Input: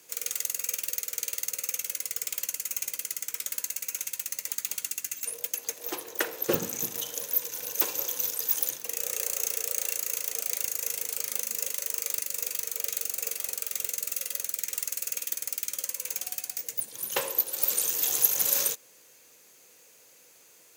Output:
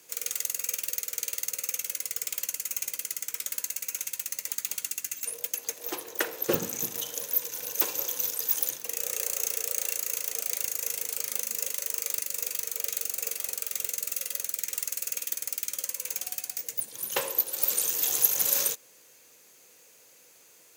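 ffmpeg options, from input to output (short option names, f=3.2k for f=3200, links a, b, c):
-filter_complex "[0:a]asettb=1/sr,asplit=3[a][b][c];[a]atrim=end=9.944[d];[b]atrim=start=9.94:end=11.28,asetpts=PTS-STARTPTS,afade=t=in:d=0.004:c=qsin,afade=t=out:st=1.336:d=0.004:c=qsin,asoftclip=type=hard:threshold=-15.5dB[e];[c]atrim=start=11.276[f];[d][e]acrossfade=d=0.004:c1=hsin:c2=qsin[g];[g][f]acrossfade=d=0.004:c1=qsin:c2=hsin"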